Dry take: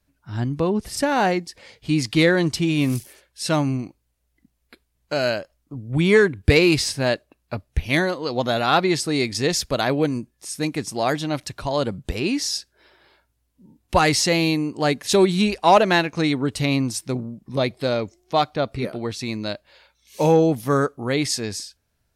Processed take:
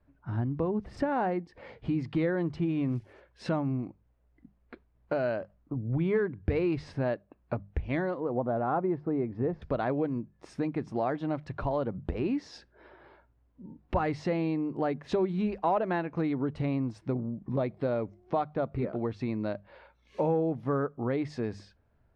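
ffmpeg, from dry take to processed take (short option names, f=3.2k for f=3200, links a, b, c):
-filter_complex "[0:a]asettb=1/sr,asplit=3[a][b][c];[a]atrim=end=8.204[d];[b]atrim=start=8.2:end=9.62,asetpts=PTS-STARTPTS,afade=t=in:d=0.004:c=qsin,afade=t=out:st=1.416:d=0.004:c=qsin,lowpass=1.1k[e];[c]atrim=start=9.616[f];[d][e]acrossfade=d=0.004:c1=hsin:c2=qsin[g];[g][f]acrossfade=d=0.004:c1=qsin:c2=hsin,lowpass=1.3k,acompressor=threshold=-35dB:ratio=3,bandreject=f=50:t=h:w=6,bandreject=f=100:t=h:w=6,bandreject=f=150:t=h:w=6,bandreject=f=200:t=h:w=6,volume=4.5dB"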